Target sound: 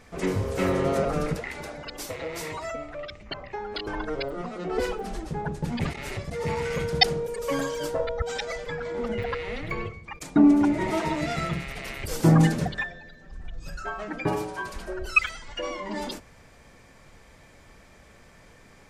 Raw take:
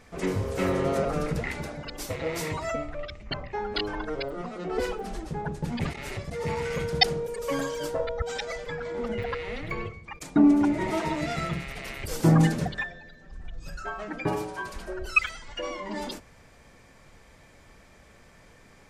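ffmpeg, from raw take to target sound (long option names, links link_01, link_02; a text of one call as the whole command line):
ffmpeg -i in.wav -filter_complex "[0:a]asettb=1/sr,asplit=3[link_01][link_02][link_03];[link_01]atrim=end=1.354[link_04];[link_02]atrim=start=1.35:end=3.87,asetpts=PTS-STARTPTS,afade=type=in:duration=0.004:curve=qsin,afade=type=out:start_time=2.516:duration=0.004:curve=qsin,acrossover=split=96|310[link_05][link_06][link_07];[link_05]acompressor=threshold=-49dB:ratio=4[link_08];[link_06]acompressor=threshold=-50dB:ratio=4[link_09];[link_07]acompressor=threshold=-33dB:ratio=4[link_10];[link_08][link_09][link_10]amix=inputs=3:normalize=0[link_11];[link_03]atrim=start=3.866[link_12];[link_04][link_11]acrossfade=duration=0.004:curve1=hsin:curve2=qsin[link_13];[link_13][link_12]acrossfade=duration=0.004:curve1=qsin:curve2=hsin,volume=1.5dB" out.wav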